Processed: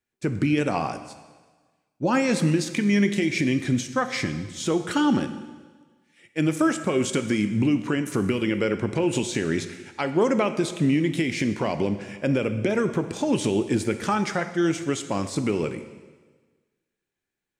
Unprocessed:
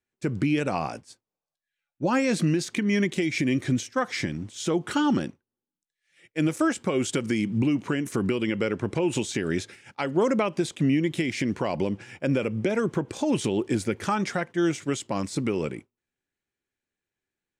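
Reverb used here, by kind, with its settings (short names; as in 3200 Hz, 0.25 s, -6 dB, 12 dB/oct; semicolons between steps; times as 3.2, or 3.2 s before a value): plate-style reverb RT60 1.4 s, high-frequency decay 1×, DRR 9 dB; gain +1.5 dB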